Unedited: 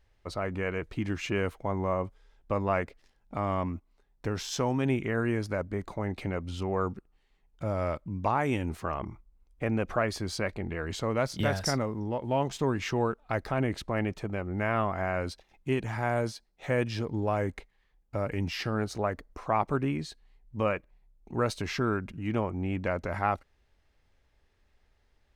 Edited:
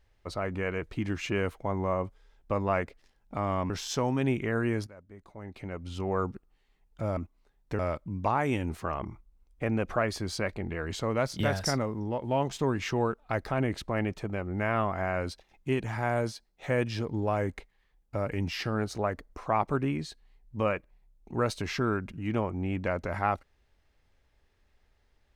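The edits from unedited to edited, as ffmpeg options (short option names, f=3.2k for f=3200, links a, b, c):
-filter_complex "[0:a]asplit=5[a][b][c][d][e];[a]atrim=end=3.702[f];[b]atrim=start=4.318:end=5.49,asetpts=PTS-STARTPTS,afade=t=out:st=1.168:d=0.004:c=hsin:silence=0.105925[g];[c]atrim=start=5.49:end=7.792,asetpts=PTS-STARTPTS,afade=t=in:d=1.22:c=qua:silence=0.105925[h];[d]atrim=start=3.698:end=4.322[i];[e]atrim=start=7.788[j];[g][h]concat=n=2:v=0:a=1[k];[f][k]acrossfade=d=0.004:c1=hsin:c2=hsin[l];[l][i]acrossfade=d=0.004:c1=hsin:c2=hsin[m];[m][j]acrossfade=d=0.004:c1=hsin:c2=hsin"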